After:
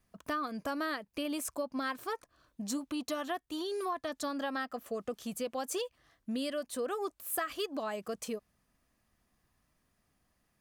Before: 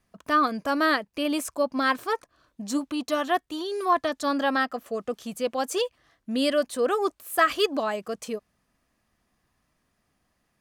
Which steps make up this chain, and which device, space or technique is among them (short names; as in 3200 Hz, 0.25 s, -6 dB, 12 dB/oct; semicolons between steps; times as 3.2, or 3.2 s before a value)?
ASMR close-microphone chain (low shelf 130 Hz +4.5 dB; compressor 6:1, threshold -28 dBFS, peak gain reduction 12.5 dB; high shelf 10000 Hz +7 dB); gain -4.5 dB